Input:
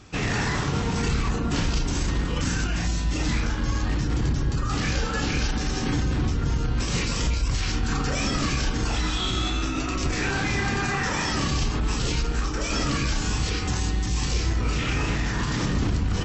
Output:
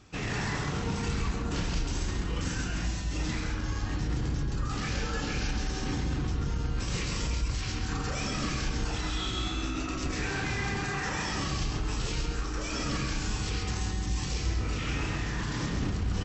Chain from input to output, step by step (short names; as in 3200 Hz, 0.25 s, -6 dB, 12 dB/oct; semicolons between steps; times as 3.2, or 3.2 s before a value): echo 0.135 s -5 dB; gain -7.5 dB